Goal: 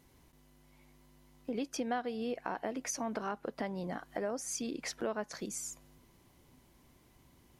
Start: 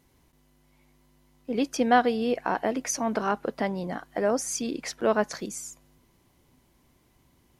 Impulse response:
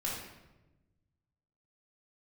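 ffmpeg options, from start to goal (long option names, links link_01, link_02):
-af "acompressor=threshold=-37dB:ratio=3"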